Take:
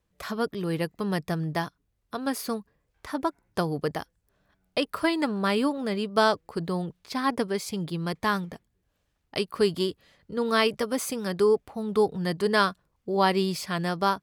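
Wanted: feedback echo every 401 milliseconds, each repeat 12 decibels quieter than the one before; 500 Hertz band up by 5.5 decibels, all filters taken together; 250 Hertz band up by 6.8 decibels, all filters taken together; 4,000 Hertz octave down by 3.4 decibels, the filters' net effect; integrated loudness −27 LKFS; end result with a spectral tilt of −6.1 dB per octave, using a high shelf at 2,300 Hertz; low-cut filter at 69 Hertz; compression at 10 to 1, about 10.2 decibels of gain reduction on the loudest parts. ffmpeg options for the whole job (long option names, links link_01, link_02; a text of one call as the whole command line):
ffmpeg -i in.wav -af "highpass=69,equalizer=frequency=250:width_type=o:gain=8,equalizer=frequency=500:width_type=o:gain=4,highshelf=frequency=2300:gain=3.5,equalizer=frequency=4000:width_type=o:gain=-8,acompressor=threshold=-22dB:ratio=10,aecho=1:1:401|802|1203:0.251|0.0628|0.0157,volume=1dB" out.wav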